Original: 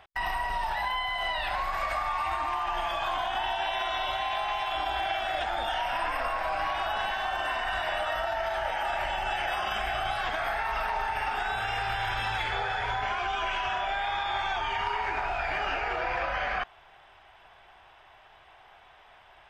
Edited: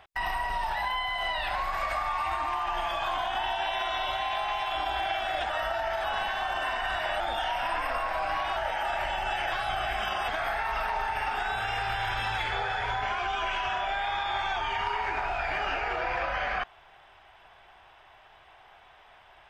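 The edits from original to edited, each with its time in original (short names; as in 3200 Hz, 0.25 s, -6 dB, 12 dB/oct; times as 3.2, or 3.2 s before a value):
5.5–6.87 swap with 8.03–8.57
9.52–10.28 reverse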